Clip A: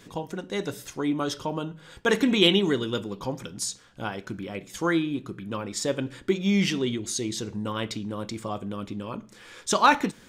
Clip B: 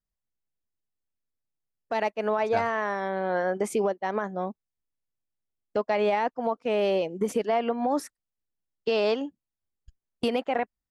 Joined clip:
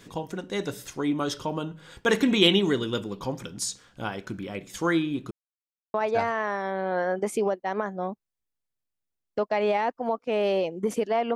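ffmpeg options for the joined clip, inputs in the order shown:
-filter_complex "[0:a]apad=whole_dur=11.35,atrim=end=11.35,asplit=2[s0][s1];[s0]atrim=end=5.31,asetpts=PTS-STARTPTS,afade=t=out:st=5.306:d=0.004:c=hsin[s2];[s1]atrim=start=5.31:end=5.94,asetpts=PTS-STARTPTS,volume=0[s3];[1:a]atrim=start=2.32:end=7.73,asetpts=PTS-STARTPTS,afade=t=in:d=0.004:c=hsin[s4];[s2][s3][s4]concat=n=3:v=0:a=1"

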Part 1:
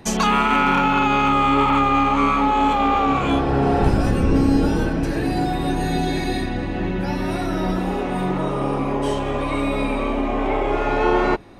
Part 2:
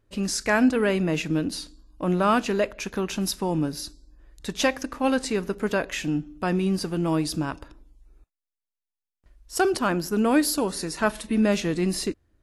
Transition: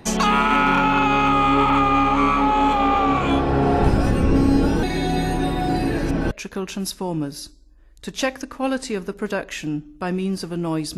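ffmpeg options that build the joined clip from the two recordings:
-filter_complex "[0:a]apad=whole_dur=10.97,atrim=end=10.97,asplit=2[s0][s1];[s0]atrim=end=4.832[s2];[s1]atrim=start=4.828:end=6.312,asetpts=PTS-STARTPTS,areverse[s3];[1:a]atrim=start=2.718:end=7.38[s4];[s2][s3]acrossfade=d=0.004:c1=hsin:c2=hsin[s5];[s5][s4]acrossfade=d=0.004:c1=hsin:c2=hsin"

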